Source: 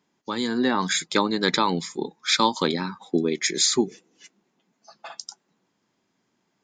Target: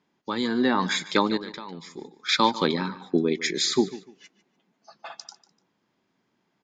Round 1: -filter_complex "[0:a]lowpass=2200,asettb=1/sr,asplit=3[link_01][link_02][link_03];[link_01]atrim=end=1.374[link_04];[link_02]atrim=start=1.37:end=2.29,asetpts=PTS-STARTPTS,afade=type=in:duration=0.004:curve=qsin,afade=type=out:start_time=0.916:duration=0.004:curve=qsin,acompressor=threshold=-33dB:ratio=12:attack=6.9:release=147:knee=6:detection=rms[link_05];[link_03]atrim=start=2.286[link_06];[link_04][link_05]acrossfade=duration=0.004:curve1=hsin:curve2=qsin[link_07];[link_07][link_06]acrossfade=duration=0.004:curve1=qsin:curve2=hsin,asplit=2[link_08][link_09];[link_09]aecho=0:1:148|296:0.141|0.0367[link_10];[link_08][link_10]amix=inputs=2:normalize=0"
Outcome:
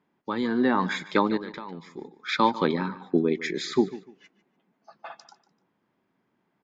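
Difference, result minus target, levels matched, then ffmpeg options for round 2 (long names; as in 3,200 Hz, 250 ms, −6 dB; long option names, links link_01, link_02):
4,000 Hz band −7.0 dB
-filter_complex "[0:a]lowpass=4600,asettb=1/sr,asplit=3[link_01][link_02][link_03];[link_01]atrim=end=1.374[link_04];[link_02]atrim=start=1.37:end=2.29,asetpts=PTS-STARTPTS,afade=type=in:duration=0.004:curve=qsin,afade=type=out:start_time=0.916:duration=0.004:curve=qsin,acompressor=threshold=-33dB:ratio=12:attack=6.9:release=147:knee=6:detection=rms[link_05];[link_03]atrim=start=2.286[link_06];[link_04][link_05]acrossfade=duration=0.004:curve1=hsin:curve2=qsin[link_07];[link_07][link_06]acrossfade=duration=0.004:curve1=qsin:curve2=hsin,asplit=2[link_08][link_09];[link_09]aecho=0:1:148|296:0.141|0.0367[link_10];[link_08][link_10]amix=inputs=2:normalize=0"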